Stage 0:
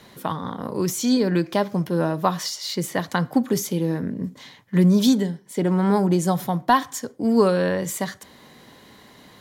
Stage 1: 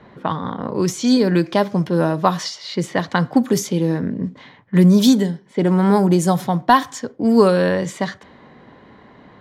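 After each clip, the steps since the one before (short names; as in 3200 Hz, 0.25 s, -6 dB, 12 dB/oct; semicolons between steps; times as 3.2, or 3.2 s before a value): low-pass opened by the level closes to 1600 Hz, open at -16 dBFS; gain +4.5 dB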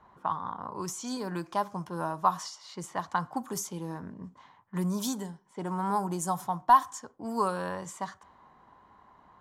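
graphic EQ 125/250/500/1000/2000/4000/8000 Hz -9/-9/-11/+9/-10/-9/+4 dB; gain -8.5 dB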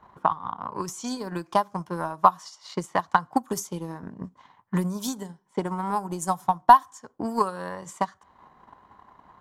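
in parallel at -1 dB: compressor, threshold -37 dBFS, peak gain reduction 20.5 dB; on the sum: transient shaper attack +11 dB, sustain -6 dB; gain -2.5 dB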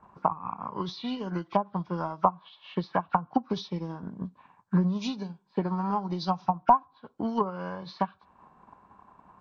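nonlinear frequency compression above 1300 Hz 1.5:1; treble ducked by the level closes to 820 Hz, closed at -18 dBFS; bell 190 Hz +5 dB 0.56 oct; gain -2.5 dB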